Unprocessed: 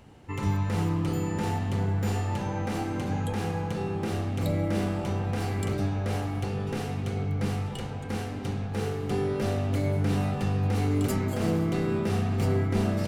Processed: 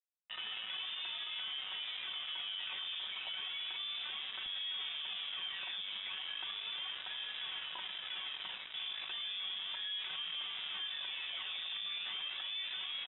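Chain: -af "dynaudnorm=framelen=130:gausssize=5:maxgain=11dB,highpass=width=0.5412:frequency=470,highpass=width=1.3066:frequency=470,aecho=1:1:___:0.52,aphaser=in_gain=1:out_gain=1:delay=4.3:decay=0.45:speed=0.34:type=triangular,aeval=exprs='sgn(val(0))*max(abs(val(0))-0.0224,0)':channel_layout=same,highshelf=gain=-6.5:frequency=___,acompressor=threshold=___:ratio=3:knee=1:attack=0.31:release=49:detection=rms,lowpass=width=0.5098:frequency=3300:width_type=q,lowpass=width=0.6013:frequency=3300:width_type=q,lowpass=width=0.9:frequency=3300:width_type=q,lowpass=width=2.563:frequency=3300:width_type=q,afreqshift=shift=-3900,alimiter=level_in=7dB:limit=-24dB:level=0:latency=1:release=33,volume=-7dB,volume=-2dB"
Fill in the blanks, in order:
5.4, 2700, -29dB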